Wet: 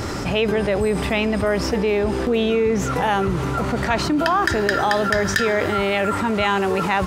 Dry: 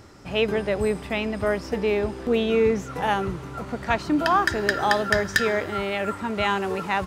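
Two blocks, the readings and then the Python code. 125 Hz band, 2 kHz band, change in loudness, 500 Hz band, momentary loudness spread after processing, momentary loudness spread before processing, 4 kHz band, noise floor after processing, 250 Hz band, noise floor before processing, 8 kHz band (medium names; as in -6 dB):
+7.5 dB, +3.0 dB, +4.0 dB, +4.0 dB, 3 LU, 6 LU, +4.0 dB, -24 dBFS, +5.0 dB, -38 dBFS, +6.5 dB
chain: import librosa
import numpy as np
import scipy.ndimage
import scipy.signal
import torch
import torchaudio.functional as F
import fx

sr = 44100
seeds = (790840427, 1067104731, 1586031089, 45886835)

y = fx.env_flatten(x, sr, amount_pct=70)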